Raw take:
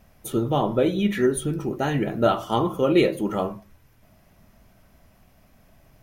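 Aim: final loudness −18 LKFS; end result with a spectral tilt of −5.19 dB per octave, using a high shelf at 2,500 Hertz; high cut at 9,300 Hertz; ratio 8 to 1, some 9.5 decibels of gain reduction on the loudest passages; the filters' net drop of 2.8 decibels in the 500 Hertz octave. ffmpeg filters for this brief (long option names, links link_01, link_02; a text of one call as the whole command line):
ffmpeg -i in.wav -af "lowpass=9300,equalizer=frequency=500:width_type=o:gain=-4,highshelf=frequency=2500:gain=6,acompressor=threshold=-25dB:ratio=8,volume=12dB" out.wav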